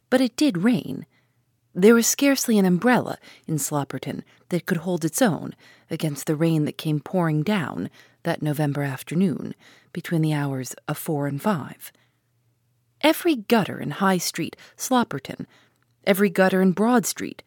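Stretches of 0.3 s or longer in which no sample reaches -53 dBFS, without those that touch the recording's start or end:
1.19–1.74
12.04–13.01

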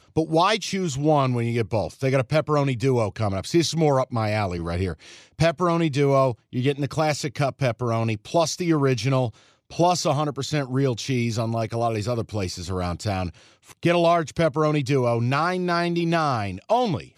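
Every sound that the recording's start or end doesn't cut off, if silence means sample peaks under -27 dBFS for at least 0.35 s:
5.39–9.29
9.79–13.29

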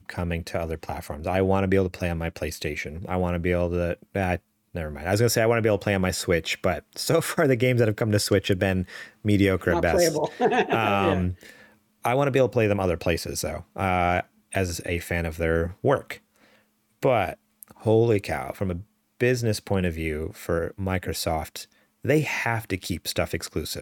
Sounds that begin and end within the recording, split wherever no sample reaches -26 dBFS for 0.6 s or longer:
12.05–16.13

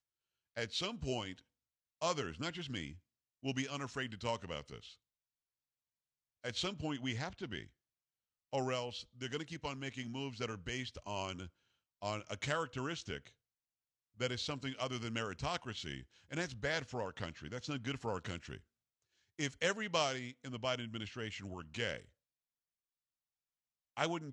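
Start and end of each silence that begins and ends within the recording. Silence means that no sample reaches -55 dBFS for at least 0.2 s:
1.41–2.01
2.98–3.43
4.94–6.44
7.69–8.53
11.49–12.02
13.31–14.18
18.6–19.39
22.05–23.97

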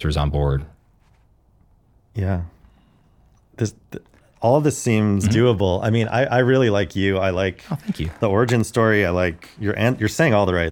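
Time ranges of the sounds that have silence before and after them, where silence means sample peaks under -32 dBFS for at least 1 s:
2.16–2.46

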